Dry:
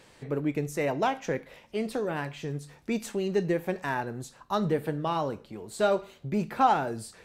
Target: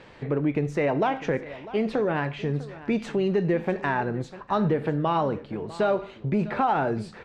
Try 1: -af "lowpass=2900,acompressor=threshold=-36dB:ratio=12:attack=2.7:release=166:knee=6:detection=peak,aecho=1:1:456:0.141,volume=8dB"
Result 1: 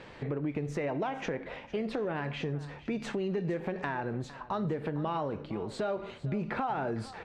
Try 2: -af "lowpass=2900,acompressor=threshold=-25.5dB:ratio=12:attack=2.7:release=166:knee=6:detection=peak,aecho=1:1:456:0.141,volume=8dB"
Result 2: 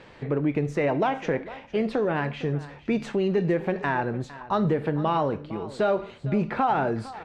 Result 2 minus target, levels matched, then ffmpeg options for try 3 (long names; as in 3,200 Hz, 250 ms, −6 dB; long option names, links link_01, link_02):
echo 193 ms early
-af "lowpass=2900,acompressor=threshold=-25.5dB:ratio=12:attack=2.7:release=166:knee=6:detection=peak,aecho=1:1:649:0.141,volume=8dB"